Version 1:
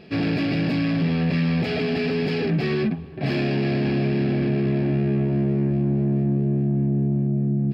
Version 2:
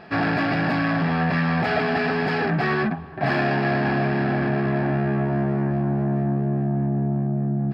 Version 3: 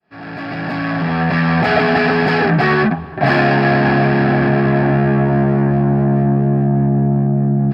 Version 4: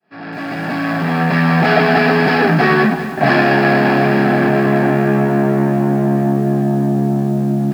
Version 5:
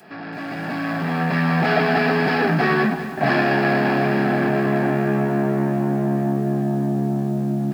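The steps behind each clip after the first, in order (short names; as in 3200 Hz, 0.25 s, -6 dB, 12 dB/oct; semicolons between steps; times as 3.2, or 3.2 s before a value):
band shelf 1100 Hz +14 dB; gain -1.5 dB
opening faded in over 1.77 s; gain +8.5 dB
Chebyshev high-pass 190 Hz, order 2; lo-fi delay 0.199 s, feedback 55%, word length 6-bit, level -11 dB; gain +2 dB
upward compressor, threshold -22 dBFS; gain -6 dB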